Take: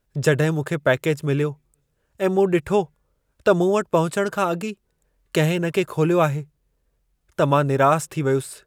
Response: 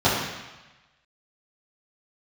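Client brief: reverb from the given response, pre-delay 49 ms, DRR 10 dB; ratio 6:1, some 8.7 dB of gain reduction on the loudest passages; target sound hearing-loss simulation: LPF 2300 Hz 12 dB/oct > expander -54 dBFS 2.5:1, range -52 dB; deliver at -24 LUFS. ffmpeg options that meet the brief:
-filter_complex "[0:a]acompressor=threshold=-22dB:ratio=6,asplit=2[a][b];[1:a]atrim=start_sample=2205,adelay=49[c];[b][c]afir=irnorm=-1:irlink=0,volume=-30dB[d];[a][d]amix=inputs=2:normalize=0,lowpass=2.3k,agate=range=-52dB:threshold=-54dB:ratio=2.5,volume=3dB"

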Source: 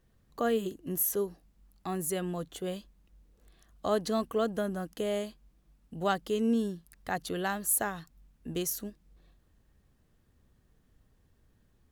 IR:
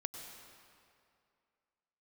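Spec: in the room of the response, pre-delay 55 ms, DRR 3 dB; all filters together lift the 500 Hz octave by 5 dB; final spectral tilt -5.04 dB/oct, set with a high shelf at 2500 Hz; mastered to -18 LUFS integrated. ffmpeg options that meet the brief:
-filter_complex "[0:a]equalizer=f=500:t=o:g=6.5,highshelf=f=2.5k:g=-4,asplit=2[a][b];[1:a]atrim=start_sample=2205,adelay=55[c];[b][c]afir=irnorm=-1:irlink=0,volume=-2dB[d];[a][d]amix=inputs=2:normalize=0,volume=10.5dB"

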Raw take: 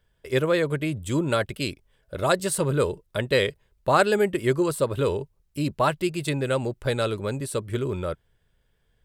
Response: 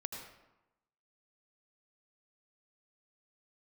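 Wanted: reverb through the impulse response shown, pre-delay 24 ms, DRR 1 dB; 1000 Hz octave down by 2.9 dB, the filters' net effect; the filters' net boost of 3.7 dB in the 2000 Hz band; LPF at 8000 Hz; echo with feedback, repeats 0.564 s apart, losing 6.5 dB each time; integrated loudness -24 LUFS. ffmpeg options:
-filter_complex "[0:a]lowpass=8k,equalizer=f=1k:t=o:g=-6.5,equalizer=f=2k:t=o:g=7,aecho=1:1:564|1128|1692|2256|2820|3384:0.473|0.222|0.105|0.0491|0.0231|0.0109,asplit=2[a][b];[1:a]atrim=start_sample=2205,adelay=24[c];[b][c]afir=irnorm=-1:irlink=0,volume=-0.5dB[d];[a][d]amix=inputs=2:normalize=0,volume=-1.5dB"

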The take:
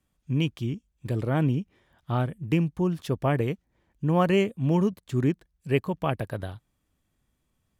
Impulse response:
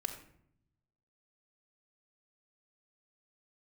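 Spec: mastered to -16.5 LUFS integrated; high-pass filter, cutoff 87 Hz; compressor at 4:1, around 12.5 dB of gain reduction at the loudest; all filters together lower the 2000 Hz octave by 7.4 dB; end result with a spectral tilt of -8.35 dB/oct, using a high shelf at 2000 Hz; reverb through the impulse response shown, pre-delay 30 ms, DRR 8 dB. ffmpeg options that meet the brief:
-filter_complex "[0:a]highpass=87,highshelf=f=2k:g=-3,equalizer=f=2k:t=o:g=-8,acompressor=threshold=-34dB:ratio=4,asplit=2[a][b];[1:a]atrim=start_sample=2205,adelay=30[c];[b][c]afir=irnorm=-1:irlink=0,volume=-8.5dB[d];[a][d]amix=inputs=2:normalize=0,volume=21.5dB"

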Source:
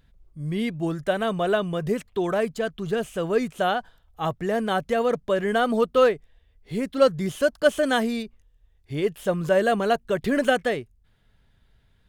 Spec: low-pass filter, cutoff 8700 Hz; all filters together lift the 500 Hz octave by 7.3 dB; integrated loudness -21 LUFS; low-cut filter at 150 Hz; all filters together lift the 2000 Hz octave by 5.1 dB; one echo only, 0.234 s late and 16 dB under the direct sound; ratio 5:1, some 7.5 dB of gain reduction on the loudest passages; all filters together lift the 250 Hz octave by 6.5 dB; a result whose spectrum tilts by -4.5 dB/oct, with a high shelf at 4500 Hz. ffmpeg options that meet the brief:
-af "highpass=150,lowpass=8.7k,equalizer=f=250:t=o:g=7,equalizer=f=500:t=o:g=6.5,equalizer=f=2k:t=o:g=6,highshelf=f=4.5k:g=3.5,acompressor=threshold=-14dB:ratio=5,aecho=1:1:234:0.158"

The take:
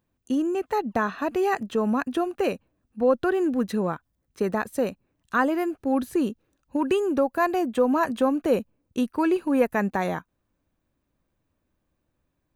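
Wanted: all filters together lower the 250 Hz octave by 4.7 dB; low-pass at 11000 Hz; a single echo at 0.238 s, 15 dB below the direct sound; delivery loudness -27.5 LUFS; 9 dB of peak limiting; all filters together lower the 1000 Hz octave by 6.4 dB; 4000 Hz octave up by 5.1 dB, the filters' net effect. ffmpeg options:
-af "lowpass=11k,equalizer=f=250:t=o:g=-5.5,equalizer=f=1k:t=o:g=-8.5,equalizer=f=4k:t=o:g=7.5,alimiter=limit=-21dB:level=0:latency=1,aecho=1:1:238:0.178,volume=3.5dB"

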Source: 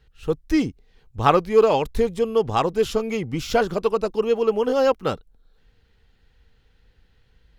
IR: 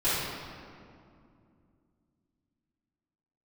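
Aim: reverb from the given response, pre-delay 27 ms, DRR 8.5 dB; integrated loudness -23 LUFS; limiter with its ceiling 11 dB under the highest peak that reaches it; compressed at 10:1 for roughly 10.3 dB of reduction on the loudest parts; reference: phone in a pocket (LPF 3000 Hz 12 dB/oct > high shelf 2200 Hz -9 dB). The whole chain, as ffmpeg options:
-filter_complex "[0:a]acompressor=threshold=-21dB:ratio=10,alimiter=limit=-22dB:level=0:latency=1,asplit=2[a][b];[1:a]atrim=start_sample=2205,adelay=27[c];[b][c]afir=irnorm=-1:irlink=0,volume=-21.5dB[d];[a][d]amix=inputs=2:normalize=0,lowpass=3k,highshelf=f=2.2k:g=-9,volume=9.5dB"

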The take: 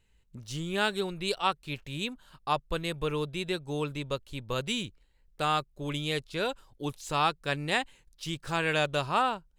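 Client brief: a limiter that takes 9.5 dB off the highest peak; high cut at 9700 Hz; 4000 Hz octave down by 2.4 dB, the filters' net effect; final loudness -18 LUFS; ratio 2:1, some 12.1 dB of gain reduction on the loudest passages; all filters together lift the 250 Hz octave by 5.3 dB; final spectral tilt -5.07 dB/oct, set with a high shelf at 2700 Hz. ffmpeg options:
-af "lowpass=9.7k,equalizer=f=250:t=o:g=7.5,highshelf=f=2.7k:g=4.5,equalizer=f=4k:t=o:g=-6.5,acompressor=threshold=-44dB:ratio=2,volume=27.5dB,alimiter=limit=-6dB:level=0:latency=1"

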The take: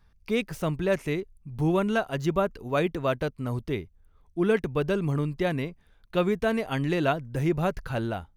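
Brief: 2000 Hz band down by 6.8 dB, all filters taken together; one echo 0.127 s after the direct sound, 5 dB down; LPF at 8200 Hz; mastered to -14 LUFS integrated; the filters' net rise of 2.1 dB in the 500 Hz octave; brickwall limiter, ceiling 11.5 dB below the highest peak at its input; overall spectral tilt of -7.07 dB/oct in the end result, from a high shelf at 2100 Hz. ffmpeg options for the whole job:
-af "lowpass=8.2k,equalizer=f=500:t=o:g=3.5,equalizer=f=2k:t=o:g=-5.5,highshelf=f=2.1k:g=-7.5,alimiter=limit=-22dB:level=0:latency=1,aecho=1:1:127:0.562,volume=17dB"

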